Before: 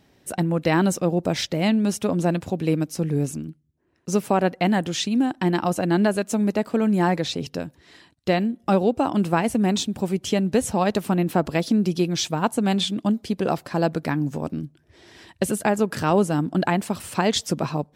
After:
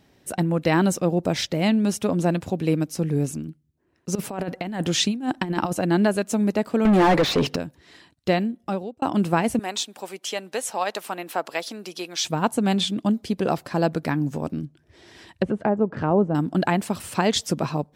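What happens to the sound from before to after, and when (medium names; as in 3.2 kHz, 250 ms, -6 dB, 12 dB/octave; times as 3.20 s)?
4.15–5.73 s: compressor with a negative ratio -24 dBFS, ratio -0.5
6.85–7.56 s: overdrive pedal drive 29 dB, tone 1.5 kHz, clips at -9.5 dBFS
8.33–9.02 s: fade out
9.59–12.25 s: high-pass 670 Hz
14.63–16.35 s: low-pass that closes with the level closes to 890 Hz, closed at -19 dBFS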